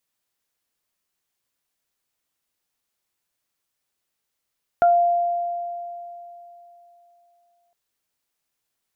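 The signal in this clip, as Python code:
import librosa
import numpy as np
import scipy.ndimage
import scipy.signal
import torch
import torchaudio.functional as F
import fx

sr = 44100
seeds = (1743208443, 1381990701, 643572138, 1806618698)

y = fx.additive(sr, length_s=2.91, hz=695.0, level_db=-11.5, upper_db=(-10.0,), decay_s=3.26, upper_decays_s=(0.21,))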